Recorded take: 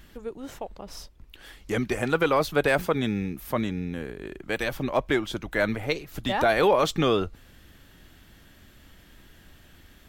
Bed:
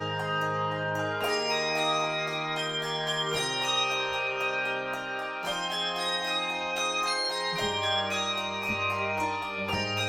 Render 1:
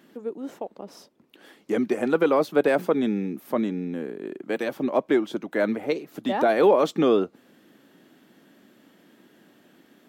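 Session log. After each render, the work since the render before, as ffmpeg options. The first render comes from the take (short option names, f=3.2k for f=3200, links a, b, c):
-af "highpass=f=220:w=0.5412,highpass=f=220:w=1.3066,tiltshelf=f=850:g=7"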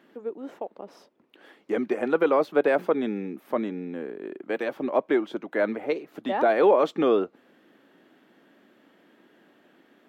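-af "bass=f=250:g=-9,treble=f=4k:g=-12"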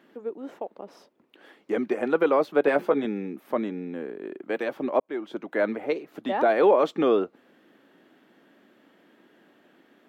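-filter_complex "[0:a]asettb=1/sr,asplit=3[a][b][c];[a]atrim=end=2.654[d];[b]atrim=start=2.65:end=3.05,asetpts=PTS-STARTPTS,afade=t=in:d=0.004:c=qsin,afade=t=out:st=0.396:d=0.004:c=qsin,asplit=2[e][f];[f]adelay=14,volume=-6dB[g];[e][g]amix=inputs=2:normalize=0,atrim=end_sample=17640[h];[c]atrim=start=3.046[i];[d][h]acrossfade=d=0.004:c1=hsin:c2=qsin[j];[j][i]acrossfade=d=0.004:c1=qsin:c2=hsin,asplit=2[k][l];[k]atrim=end=5,asetpts=PTS-STARTPTS,afade=t=out:st=4.996:d=0.004:c=hsin[m];[l]atrim=start=5,asetpts=PTS-STARTPTS,afade=t=in:d=0.43[n];[m][n]concat=n=2:v=0:a=1"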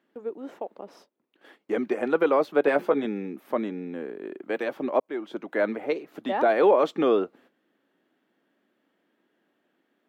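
-af "agate=range=-13dB:threshold=-53dB:ratio=16:detection=peak,lowshelf=f=76:g=-8"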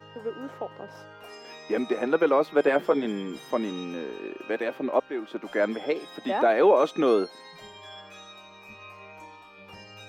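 -filter_complex "[1:a]volume=-16.5dB[a];[0:a][a]amix=inputs=2:normalize=0"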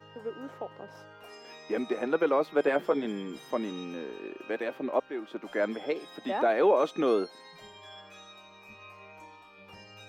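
-af "volume=-4dB"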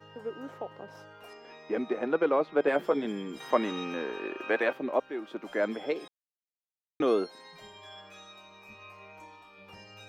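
-filter_complex "[0:a]asettb=1/sr,asplit=3[a][b][c];[a]atrim=end=1.334[d];[b]atrim=start=1.33:end=2.68,asetpts=PTS-STARTPTS,afade=t=in:d=0.004:c=qsin,afade=t=out:st=1.346:d=0.004:c=qsin,adynamicsmooth=sensitivity=1.5:basefreq=3.9k[e];[c]atrim=start=2.676[f];[d][e]acrossfade=d=0.004:c1=hsin:c2=qsin[g];[g][f]acrossfade=d=0.004:c1=qsin:c2=hsin,asettb=1/sr,asplit=3[h][i][j];[h]atrim=end=3.404[k];[i]atrim=start=3.4:end=4.73,asetpts=PTS-STARTPTS,afade=t=in:d=0.004:c=qsin,afade=t=out:st=1.326:d=0.004:c=qsin,equalizer=f=1.4k:t=o:w=3:g=9.5[l];[j]atrim=start=4.726[m];[k][l]acrossfade=d=0.004:c1=hsin:c2=qsin[n];[n][m]acrossfade=d=0.004:c1=qsin:c2=hsin,asplit=3[o][p][q];[o]atrim=end=6.08,asetpts=PTS-STARTPTS,afade=t=out:st=6.076:d=0.004:c=hsin[r];[p]atrim=start=6.08:end=7,asetpts=PTS-STARTPTS,volume=0[s];[q]atrim=start=7,asetpts=PTS-STARTPTS,afade=t=in:d=0.004:c=hsin[t];[r][s][t]concat=n=3:v=0:a=1"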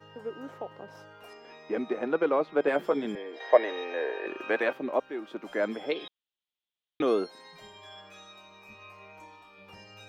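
-filter_complex "[0:a]asettb=1/sr,asplit=3[a][b][c];[a]atrim=end=3.154[d];[b]atrim=start=3.15:end=4.27,asetpts=PTS-STARTPTS,afade=t=in:d=0.004:c=qsin,afade=t=out:st=1.116:d=0.004:c=qsin,highpass=f=380:w=0.5412,highpass=f=380:w=1.3066,equalizer=f=470:t=q:w=4:g=6,equalizer=f=660:t=q:w=4:g=10,equalizer=f=1.3k:t=q:w=4:g=-9,equalizer=f=1.8k:t=q:w=4:g=9,equalizer=f=2.9k:t=q:w=4:g=-4,lowpass=f=4.7k:w=0.5412,lowpass=f=4.7k:w=1.3066[e];[c]atrim=start=4.266[f];[d][e]acrossfade=d=0.004:c1=hsin:c2=qsin[g];[g][f]acrossfade=d=0.004:c1=qsin:c2=hsin,asettb=1/sr,asplit=3[h][i][j];[h]atrim=end=5.914[k];[i]atrim=start=5.91:end=7.02,asetpts=PTS-STARTPTS,afade=t=in:d=0.004:c=qsin,afade=t=out:st=1.106:d=0.004:c=qsin,lowpass=f=3.4k:t=q:w=4.9[l];[j]atrim=start=7.016[m];[k][l]acrossfade=d=0.004:c1=hsin:c2=qsin[n];[n][m]acrossfade=d=0.004:c1=qsin:c2=hsin"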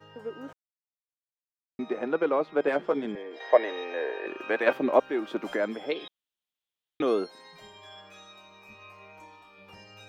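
-filter_complex "[0:a]asettb=1/sr,asplit=3[a][b][c];[a]atrim=end=2.724[d];[b]atrim=start=2.72:end=3.31,asetpts=PTS-STARTPTS,afade=t=in:d=0.004:c=qsin,afade=t=out:st=0.586:d=0.004:c=qsin,adynamicsmooth=sensitivity=5.5:basefreq=3.7k[e];[c]atrim=start=3.306[f];[d][e]acrossfade=d=0.004:c1=hsin:c2=qsin[g];[g][f]acrossfade=d=0.004:c1=qsin:c2=hsin,asplit=3[h][i][j];[h]afade=t=out:st=4.66:d=0.02[k];[i]acontrast=76,afade=t=in:st=4.66:d=0.02,afade=t=out:st=5.55:d=0.02[l];[j]afade=t=in:st=5.55:d=0.02[m];[k][l][m]amix=inputs=3:normalize=0,asplit=3[n][o][p];[n]atrim=end=0.53,asetpts=PTS-STARTPTS,afade=t=out:st=0.526:d=0.004:c=hsin[q];[o]atrim=start=0.53:end=1.79,asetpts=PTS-STARTPTS,volume=0[r];[p]atrim=start=1.79,asetpts=PTS-STARTPTS,afade=t=in:d=0.004:c=hsin[s];[q][r][s]concat=n=3:v=0:a=1"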